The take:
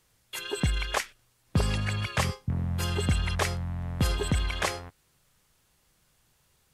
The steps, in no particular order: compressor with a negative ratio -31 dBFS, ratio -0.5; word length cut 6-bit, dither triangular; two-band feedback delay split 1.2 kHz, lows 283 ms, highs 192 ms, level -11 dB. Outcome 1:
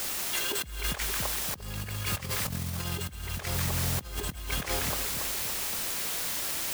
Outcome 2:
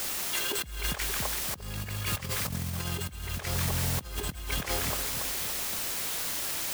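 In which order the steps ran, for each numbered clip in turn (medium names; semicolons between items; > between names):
word length cut > two-band feedback delay > compressor with a negative ratio; two-band feedback delay > word length cut > compressor with a negative ratio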